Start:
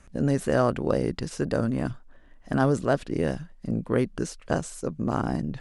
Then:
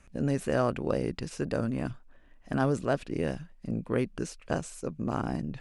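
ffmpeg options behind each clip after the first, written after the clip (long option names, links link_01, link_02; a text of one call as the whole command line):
ffmpeg -i in.wav -af "equalizer=frequency=2500:width=4.7:gain=6.5,volume=-4.5dB" out.wav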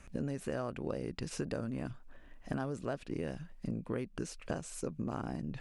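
ffmpeg -i in.wav -af "acompressor=threshold=-37dB:ratio=6,volume=3dB" out.wav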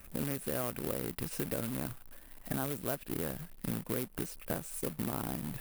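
ffmpeg -i in.wav -af "highshelf=frequency=7600:gain=-10.5,acrusher=bits=2:mode=log:mix=0:aa=0.000001,aexciter=amount=5.1:drive=4.7:freq=8900" out.wav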